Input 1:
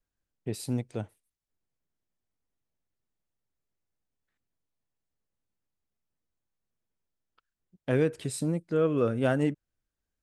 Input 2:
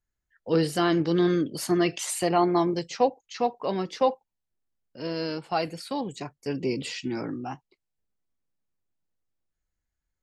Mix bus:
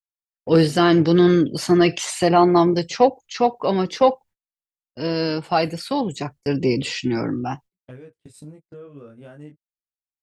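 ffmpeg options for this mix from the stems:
-filter_complex "[0:a]acompressor=threshold=-32dB:ratio=10,flanger=delay=16:depth=5.3:speed=0.39,volume=-3.5dB[a];[1:a]acrossover=split=7200[b][c];[c]acompressor=threshold=-51dB:ratio=4:attack=1:release=60[d];[b][d]amix=inputs=2:normalize=0,agate=range=-33dB:threshold=-47dB:ratio=3:detection=peak,acontrast=55,volume=1.5dB[e];[a][e]amix=inputs=2:normalize=0,agate=range=-26dB:threshold=-45dB:ratio=16:detection=peak,equalizer=f=75:t=o:w=1.6:g=6.5"

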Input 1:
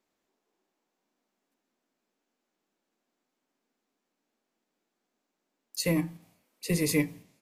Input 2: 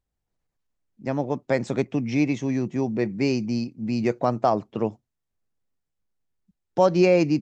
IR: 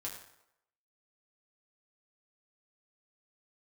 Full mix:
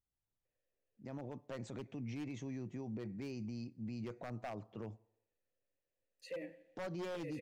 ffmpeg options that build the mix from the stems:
-filter_complex "[0:a]asplit=3[a][b][c];[a]bandpass=f=530:t=q:w=8,volume=0dB[d];[b]bandpass=f=1.84k:t=q:w=8,volume=-6dB[e];[c]bandpass=f=2.48k:t=q:w=8,volume=-9dB[f];[d][e][f]amix=inputs=3:normalize=0,adelay=450,volume=-2.5dB,asplit=2[g][h];[h]volume=-8.5dB[i];[1:a]equalizer=f=110:t=o:w=0.34:g=6.5,volume=-13.5dB,asplit=2[j][k];[k]volume=-22.5dB[l];[2:a]atrim=start_sample=2205[m];[i][l]amix=inputs=2:normalize=0[n];[n][m]afir=irnorm=-1:irlink=0[o];[g][j][o]amix=inputs=3:normalize=0,bandreject=f=5.3k:w=15,aeval=exprs='0.0447*(abs(mod(val(0)/0.0447+3,4)-2)-1)':c=same,alimiter=level_in=12.5dB:limit=-24dB:level=0:latency=1:release=42,volume=-12.5dB"

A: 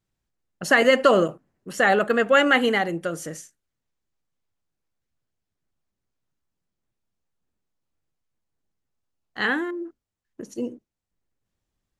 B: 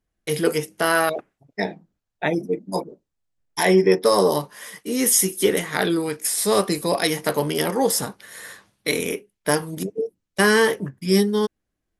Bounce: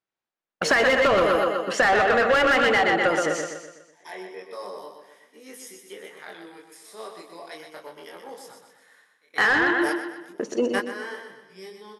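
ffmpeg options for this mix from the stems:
-filter_complex "[0:a]agate=range=-16dB:threshold=-43dB:ratio=16:detection=peak,lowpass=7k,volume=-0.5dB,asplit=3[a][b][c];[b]volume=-6.5dB[d];[1:a]flanger=delay=22.5:depth=3:speed=0.62,adelay=350,volume=-15dB,asplit=2[e][f];[f]volume=-13.5dB[g];[c]apad=whole_len=544568[h];[e][h]sidechaingate=range=-36dB:threshold=-41dB:ratio=16:detection=peak[i];[d][g]amix=inputs=2:normalize=0,aecho=0:1:124|248|372|496|620|744:1|0.46|0.212|0.0973|0.0448|0.0206[j];[a][i][j]amix=inputs=3:normalize=0,lowshelf=f=170:g=-12,asplit=2[k][l];[l]highpass=f=720:p=1,volume=23dB,asoftclip=type=tanh:threshold=-4.5dB[m];[k][m]amix=inputs=2:normalize=0,lowpass=f=2k:p=1,volume=-6dB,acompressor=threshold=-17dB:ratio=6"

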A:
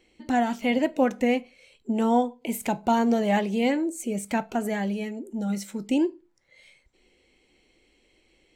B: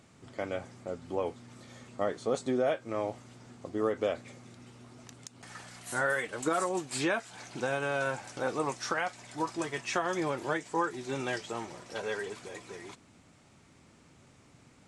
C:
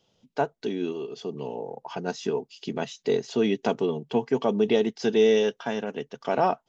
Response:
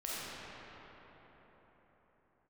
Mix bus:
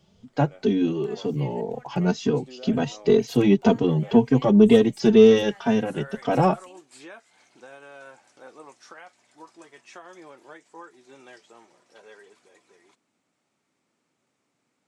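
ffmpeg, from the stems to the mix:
-filter_complex "[0:a]acompressor=threshold=-28dB:ratio=4,highpass=830,adelay=750,volume=-11.5dB[a];[1:a]highpass=240,volume=-13.5dB[b];[2:a]bass=f=250:g=12,treble=f=4k:g=-1,acontrast=59,asplit=2[c][d];[d]adelay=3.1,afreqshift=2[e];[c][e]amix=inputs=2:normalize=1,volume=0dB[f];[a][b][f]amix=inputs=3:normalize=0"

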